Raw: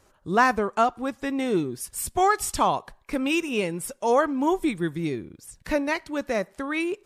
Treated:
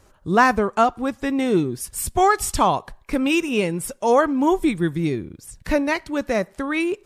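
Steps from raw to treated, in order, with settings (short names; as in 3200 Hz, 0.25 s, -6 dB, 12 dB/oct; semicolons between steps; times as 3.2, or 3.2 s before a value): low shelf 170 Hz +6.5 dB; gain +3.5 dB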